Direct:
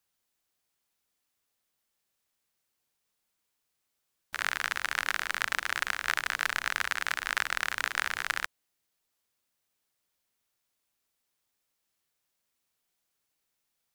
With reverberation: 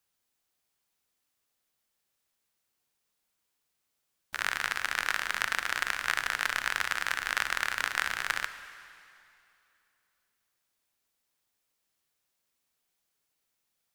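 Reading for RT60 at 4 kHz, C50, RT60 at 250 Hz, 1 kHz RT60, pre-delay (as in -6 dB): 2.5 s, 11.5 dB, 2.6 s, 2.7 s, 7 ms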